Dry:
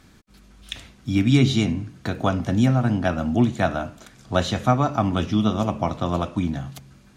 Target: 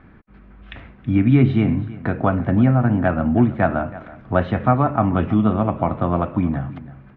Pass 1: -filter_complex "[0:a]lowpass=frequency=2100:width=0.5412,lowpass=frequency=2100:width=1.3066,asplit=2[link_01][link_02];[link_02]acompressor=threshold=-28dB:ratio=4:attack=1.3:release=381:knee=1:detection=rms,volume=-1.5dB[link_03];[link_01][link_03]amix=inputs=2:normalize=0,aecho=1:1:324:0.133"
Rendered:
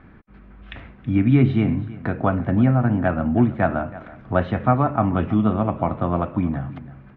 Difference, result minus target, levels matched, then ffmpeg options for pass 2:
downward compressor: peak gain reduction +7.5 dB
-filter_complex "[0:a]lowpass=frequency=2100:width=0.5412,lowpass=frequency=2100:width=1.3066,asplit=2[link_01][link_02];[link_02]acompressor=threshold=-18dB:ratio=4:attack=1.3:release=381:knee=1:detection=rms,volume=-1.5dB[link_03];[link_01][link_03]amix=inputs=2:normalize=0,aecho=1:1:324:0.133"

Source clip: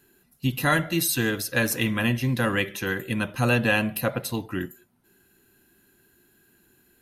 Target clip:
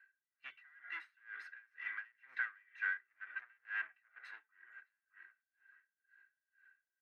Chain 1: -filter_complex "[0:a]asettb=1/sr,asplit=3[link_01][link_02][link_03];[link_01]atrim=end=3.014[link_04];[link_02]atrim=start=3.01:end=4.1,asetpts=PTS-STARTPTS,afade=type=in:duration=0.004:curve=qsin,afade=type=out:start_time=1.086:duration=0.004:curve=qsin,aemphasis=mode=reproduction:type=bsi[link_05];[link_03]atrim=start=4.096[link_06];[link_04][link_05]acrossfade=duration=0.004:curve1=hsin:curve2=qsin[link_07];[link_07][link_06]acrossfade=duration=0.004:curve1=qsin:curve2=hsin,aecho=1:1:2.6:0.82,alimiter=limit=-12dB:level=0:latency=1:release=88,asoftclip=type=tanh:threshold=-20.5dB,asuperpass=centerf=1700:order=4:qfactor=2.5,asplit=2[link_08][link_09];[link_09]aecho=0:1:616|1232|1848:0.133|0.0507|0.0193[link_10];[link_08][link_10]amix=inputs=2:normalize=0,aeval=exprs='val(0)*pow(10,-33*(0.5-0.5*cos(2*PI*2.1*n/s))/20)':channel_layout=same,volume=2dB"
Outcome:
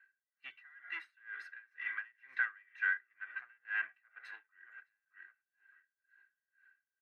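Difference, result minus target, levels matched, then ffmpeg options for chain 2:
soft clipping: distortion −6 dB
-filter_complex "[0:a]asettb=1/sr,asplit=3[link_01][link_02][link_03];[link_01]atrim=end=3.014[link_04];[link_02]atrim=start=3.01:end=4.1,asetpts=PTS-STARTPTS,afade=type=in:duration=0.004:curve=qsin,afade=type=out:start_time=1.086:duration=0.004:curve=qsin,aemphasis=mode=reproduction:type=bsi[link_05];[link_03]atrim=start=4.096[link_06];[link_04][link_05]acrossfade=duration=0.004:curve1=hsin:curve2=qsin[link_07];[link_07][link_06]acrossfade=duration=0.004:curve1=qsin:curve2=hsin,aecho=1:1:2.6:0.82,alimiter=limit=-12dB:level=0:latency=1:release=88,asoftclip=type=tanh:threshold=-27.5dB,asuperpass=centerf=1700:order=4:qfactor=2.5,asplit=2[link_08][link_09];[link_09]aecho=0:1:616|1232|1848:0.133|0.0507|0.0193[link_10];[link_08][link_10]amix=inputs=2:normalize=0,aeval=exprs='val(0)*pow(10,-33*(0.5-0.5*cos(2*PI*2.1*n/s))/20)':channel_layout=same,volume=2dB"

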